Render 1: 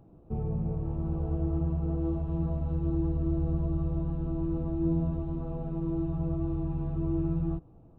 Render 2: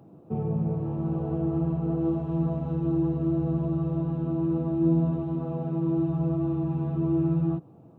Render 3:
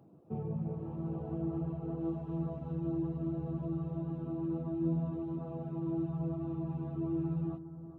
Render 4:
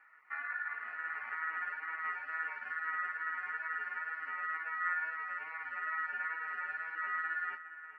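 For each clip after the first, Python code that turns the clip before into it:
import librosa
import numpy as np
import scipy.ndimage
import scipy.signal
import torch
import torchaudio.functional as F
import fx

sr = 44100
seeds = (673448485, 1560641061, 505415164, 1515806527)

y1 = scipy.signal.sosfilt(scipy.signal.butter(4, 120.0, 'highpass', fs=sr, output='sos'), x)
y1 = y1 * 10.0 ** (6.0 / 20.0)
y2 = fx.dereverb_blind(y1, sr, rt60_s=0.51)
y2 = fx.echo_bbd(y2, sr, ms=411, stages=4096, feedback_pct=51, wet_db=-12.5)
y2 = y2 * 10.0 ** (-8.0 / 20.0)
y3 = fx.wow_flutter(y2, sr, seeds[0], rate_hz=2.1, depth_cents=66.0)
y3 = y3 * np.sin(2.0 * np.pi * 1600.0 * np.arange(len(y3)) / sr)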